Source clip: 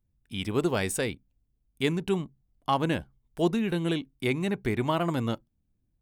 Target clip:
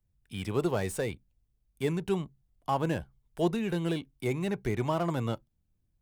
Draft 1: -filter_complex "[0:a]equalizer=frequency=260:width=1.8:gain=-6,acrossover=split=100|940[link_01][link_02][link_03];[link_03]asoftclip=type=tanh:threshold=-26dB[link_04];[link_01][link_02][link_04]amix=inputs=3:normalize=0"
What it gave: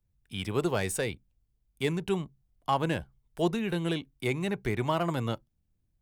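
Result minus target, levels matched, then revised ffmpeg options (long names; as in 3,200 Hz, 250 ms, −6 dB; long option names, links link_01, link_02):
soft clipping: distortion −9 dB
-filter_complex "[0:a]equalizer=frequency=260:width=1.8:gain=-6,acrossover=split=100|940[link_01][link_02][link_03];[link_03]asoftclip=type=tanh:threshold=-37.5dB[link_04];[link_01][link_02][link_04]amix=inputs=3:normalize=0"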